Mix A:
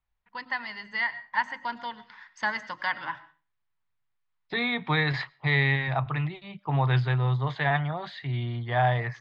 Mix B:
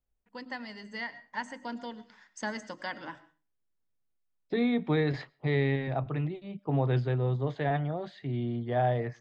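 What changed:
first voice: remove distance through air 140 m; master: add ten-band graphic EQ 125 Hz -6 dB, 250 Hz +7 dB, 500 Hz +6 dB, 1 kHz -11 dB, 2 kHz -8 dB, 4 kHz -9 dB

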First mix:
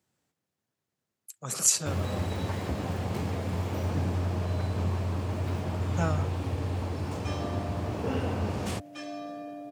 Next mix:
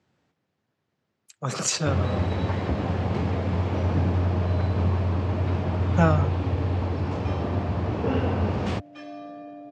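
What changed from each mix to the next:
speech +10.0 dB; first sound +6.0 dB; master: add distance through air 170 m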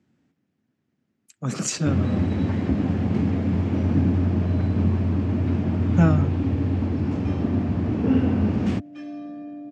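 master: add graphic EQ 250/500/1000/4000 Hz +11/-5/-6/-5 dB

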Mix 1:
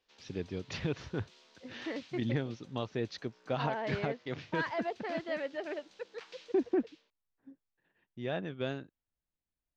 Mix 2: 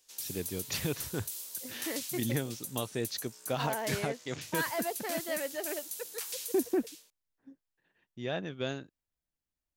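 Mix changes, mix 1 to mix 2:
background: remove distance through air 140 m; master: remove distance through air 190 m

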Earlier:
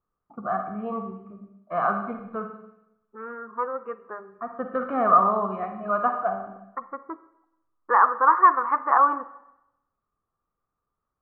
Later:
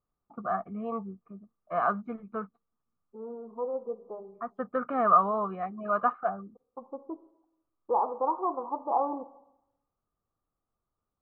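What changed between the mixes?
first voice: send off; second voice: add steep low-pass 850 Hz 48 dB/octave

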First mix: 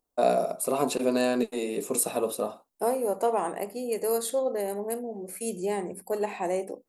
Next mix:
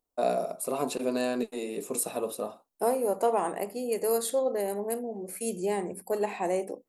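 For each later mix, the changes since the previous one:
first voice -4.0 dB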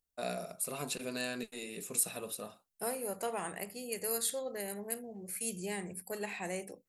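master: add high-order bell 510 Hz -12 dB 2.6 oct

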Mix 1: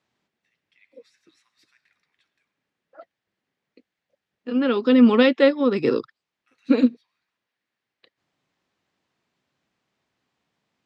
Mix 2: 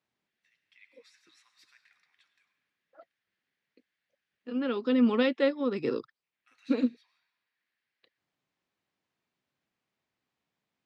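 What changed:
first voice: send +6.0 dB; second voice -9.5 dB

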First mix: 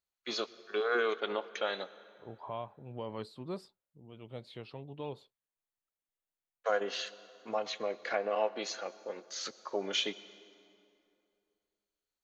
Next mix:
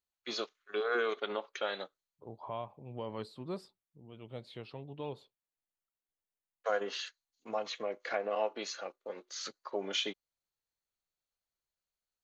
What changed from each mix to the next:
reverb: off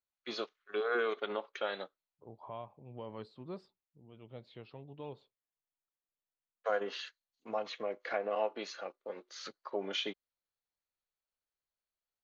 second voice -4.0 dB; master: add distance through air 130 m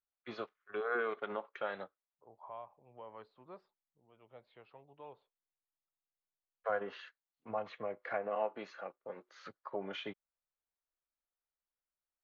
first voice: remove high-pass 490 Hz 12 dB/octave; master: add three-band isolator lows -16 dB, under 550 Hz, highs -18 dB, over 2.3 kHz

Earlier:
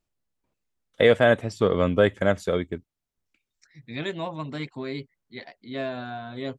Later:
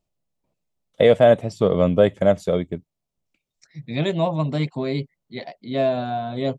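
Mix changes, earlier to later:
second voice +5.5 dB; master: add fifteen-band graphic EQ 160 Hz +8 dB, 630 Hz +7 dB, 1.6 kHz -7 dB

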